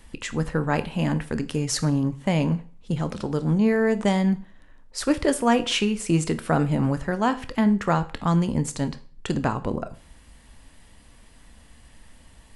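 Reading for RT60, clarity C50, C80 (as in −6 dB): 0.40 s, 16.5 dB, 21.0 dB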